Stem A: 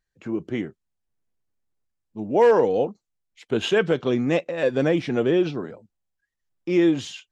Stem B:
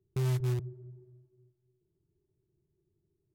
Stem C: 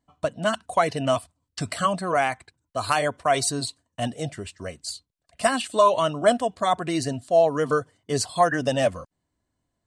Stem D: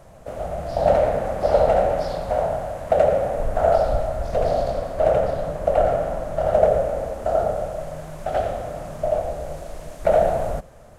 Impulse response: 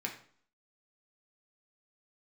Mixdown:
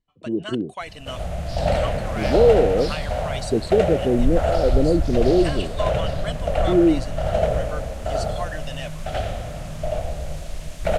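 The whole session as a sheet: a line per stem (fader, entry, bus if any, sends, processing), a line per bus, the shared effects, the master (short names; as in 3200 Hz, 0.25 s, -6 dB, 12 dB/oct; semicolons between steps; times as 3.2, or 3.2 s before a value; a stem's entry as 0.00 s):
+2.0 dB, 0.00 s, no send, inverse Chebyshev low-pass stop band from 1400 Hz, stop band 50 dB
-7.5 dB, 2.00 s, no send, dry
-16.5 dB, 0.00 s, no send, dry
-8.0 dB, 0.80 s, no send, tone controls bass +14 dB, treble +8 dB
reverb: off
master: bell 2900 Hz +14 dB 2 oct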